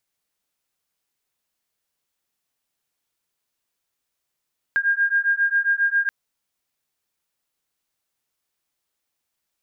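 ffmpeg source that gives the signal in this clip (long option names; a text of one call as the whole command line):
ffmpeg -f lavfi -i "aevalsrc='0.0944*(sin(2*PI*1610*t)+sin(2*PI*1617.4*t))':duration=1.33:sample_rate=44100" out.wav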